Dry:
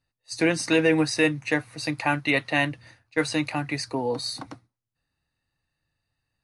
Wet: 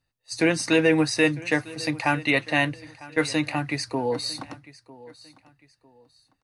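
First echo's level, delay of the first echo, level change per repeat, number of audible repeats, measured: −20.0 dB, 951 ms, −10.0 dB, 2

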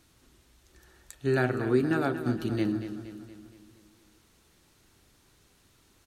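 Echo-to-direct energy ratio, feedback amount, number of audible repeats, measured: −9.5 dB, 53%, 5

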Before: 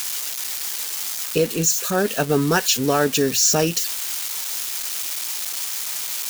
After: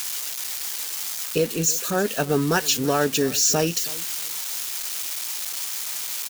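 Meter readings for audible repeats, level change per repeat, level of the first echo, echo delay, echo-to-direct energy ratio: 2, −13.0 dB, −20.0 dB, 323 ms, −20.0 dB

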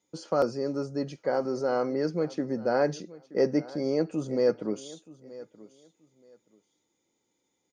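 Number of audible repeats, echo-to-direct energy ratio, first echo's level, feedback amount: 2, −19.0 dB, −19.0 dB, 21%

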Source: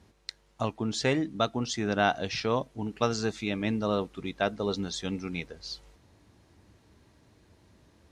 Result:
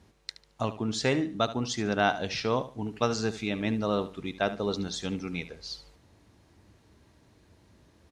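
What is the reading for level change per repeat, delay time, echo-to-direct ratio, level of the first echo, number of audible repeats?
−12.0 dB, 73 ms, −13.5 dB, −14.0 dB, 2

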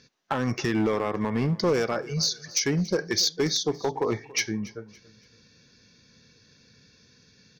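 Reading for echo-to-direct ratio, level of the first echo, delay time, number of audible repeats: −20.0 dB, −20.5 dB, 282 ms, 2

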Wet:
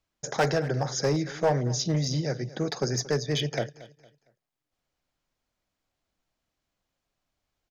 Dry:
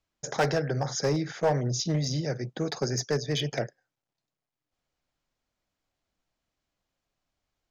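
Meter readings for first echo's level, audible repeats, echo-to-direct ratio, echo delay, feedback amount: −18.5 dB, 2, −18.0 dB, 229 ms, 33%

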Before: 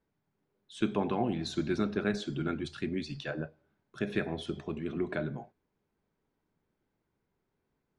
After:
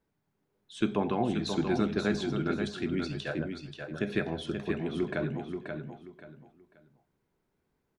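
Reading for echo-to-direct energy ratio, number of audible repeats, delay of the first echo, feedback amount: −5.5 dB, 3, 532 ms, 27%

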